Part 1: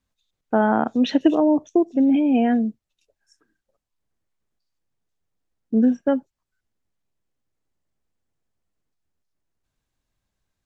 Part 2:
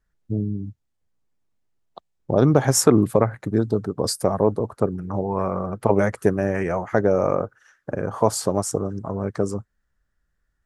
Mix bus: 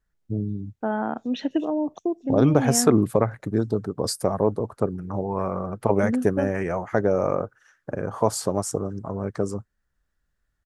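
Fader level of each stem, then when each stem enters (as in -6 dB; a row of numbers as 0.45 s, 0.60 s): -7.5 dB, -2.5 dB; 0.30 s, 0.00 s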